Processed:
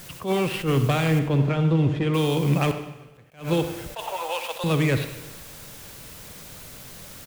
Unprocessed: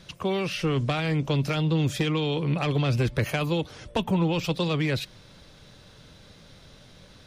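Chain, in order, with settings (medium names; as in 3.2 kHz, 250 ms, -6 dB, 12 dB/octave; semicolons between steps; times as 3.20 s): median filter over 9 samples; 3.94–4.64 s: steep high-pass 540 Hz 36 dB/octave; word length cut 8-bit, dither triangular; 1.19–2.14 s: tape spacing loss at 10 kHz 23 dB; 2.71–3.32 s: inverted gate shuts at -28 dBFS, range -33 dB; speakerphone echo 100 ms, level -13 dB; reverberation RT60 1.1 s, pre-delay 50 ms, DRR 10 dB; attacks held to a fixed rise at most 180 dB/s; trim +4 dB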